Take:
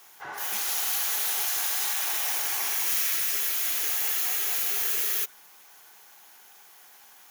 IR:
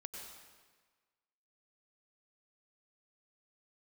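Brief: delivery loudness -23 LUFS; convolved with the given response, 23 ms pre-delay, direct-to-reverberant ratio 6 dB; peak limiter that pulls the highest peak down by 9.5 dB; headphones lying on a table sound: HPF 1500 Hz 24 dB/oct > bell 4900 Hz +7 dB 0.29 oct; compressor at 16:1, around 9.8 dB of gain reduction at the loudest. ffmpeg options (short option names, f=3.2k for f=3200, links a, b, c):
-filter_complex "[0:a]acompressor=threshold=-33dB:ratio=16,alimiter=level_in=8.5dB:limit=-24dB:level=0:latency=1,volume=-8.5dB,asplit=2[a][b];[1:a]atrim=start_sample=2205,adelay=23[c];[b][c]afir=irnorm=-1:irlink=0,volume=-3dB[d];[a][d]amix=inputs=2:normalize=0,highpass=f=1.5k:w=0.5412,highpass=f=1.5k:w=1.3066,equalizer=f=4.9k:t=o:w=0.29:g=7,volume=16.5dB"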